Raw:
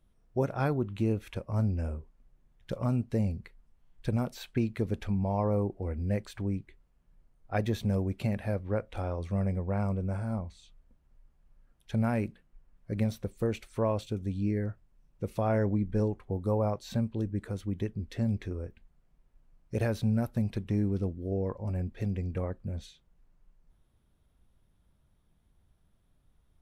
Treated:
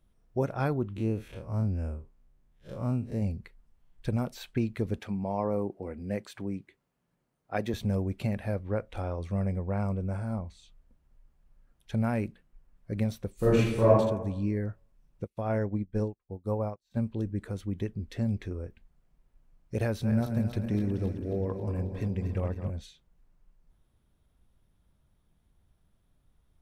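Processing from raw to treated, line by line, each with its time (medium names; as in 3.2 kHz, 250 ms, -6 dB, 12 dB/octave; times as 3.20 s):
0.96–3.22 s: spectral blur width 85 ms
4.98–7.74 s: high-pass 160 Hz
13.34–13.88 s: reverb throw, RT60 0.92 s, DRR -9.5 dB
15.24–16.97 s: upward expansion 2.5:1, over -48 dBFS
19.85–22.70 s: backward echo that repeats 135 ms, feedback 74%, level -8 dB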